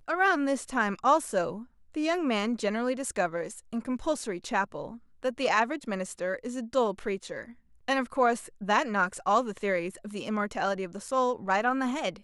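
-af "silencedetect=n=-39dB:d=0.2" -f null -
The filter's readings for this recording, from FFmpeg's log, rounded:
silence_start: 1.63
silence_end: 1.95 | silence_duration: 0.31
silence_start: 4.96
silence_end: 5.23 | silence_duration: 0.27
silence_start: 7.50
silence_end: 7.88 | silence_duration: 0.38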